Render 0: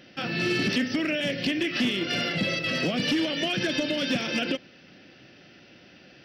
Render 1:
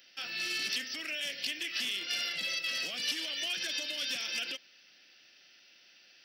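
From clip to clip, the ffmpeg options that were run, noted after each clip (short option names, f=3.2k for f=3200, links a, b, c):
-af "aderivative,volume=3dB"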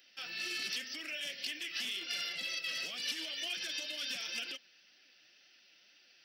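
-af "flanger=delay=2.3:depth=4.5:regen=47:speed=2:shape=triangular"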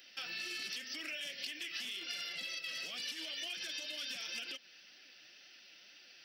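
-af "acompressor=threshold=-46dB:ratio=4,volume=5.5dB"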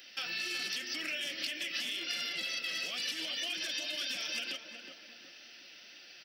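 -filter_complex "[0:a]asplit=2[a][b];[b]adelay=367,lowpass=f=1.3k:p=1,volume=-5dB,asplit=2[c][d];[d]adelay=367,lowpass=f=1.3k:p=1,volume=0.5,asplit=2[e][f];[f]adelay=367,lowpass=f=1.3k:p=1,volume=0.5,asplit=2[g][h];[h]adelay=367,lowpass=f=1.3k:p=1,volume=0.5,asplit=2[i][j];[j]adelay=367,lowpass=f=1.3k:p=1,volume=0.5,asplit=2[k][l];[l]adelay=367,lowpass=f=1.3k:p=1,volume=0.5[m];[a][c][e][g][i][k][m]amix=inputs=7:normalize=0,volume=5dB"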